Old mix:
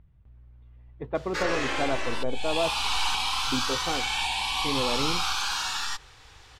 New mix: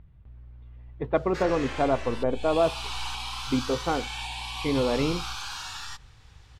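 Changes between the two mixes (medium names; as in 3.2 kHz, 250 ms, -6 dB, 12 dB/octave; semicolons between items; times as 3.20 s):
speech +5.0 dB; background -7.5 dB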